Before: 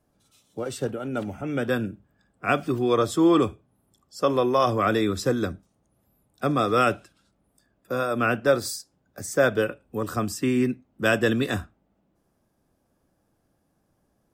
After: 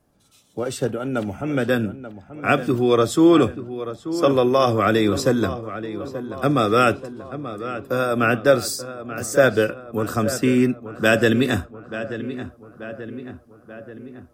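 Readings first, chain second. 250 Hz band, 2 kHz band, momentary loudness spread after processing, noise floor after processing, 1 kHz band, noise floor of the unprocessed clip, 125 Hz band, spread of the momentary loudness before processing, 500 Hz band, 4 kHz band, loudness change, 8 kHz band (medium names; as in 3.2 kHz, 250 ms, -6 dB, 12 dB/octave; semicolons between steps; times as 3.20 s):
+5.5 dB, +4.5 dB, 17 LU, -53 dBFS, +3.5 dB, -71 dBFS, +5.5 dB, 11 LU, +5.0 dB, +5.0 dB, +4.0 dB, +5.0 dB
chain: dynamic bell 1 kHz, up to -5 dB, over -38 dBFS, Q 2.9; filtered feedback delay 884 ms, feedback 59%, low-pass 2.5 kHz, level -12 dB; trim +5 dB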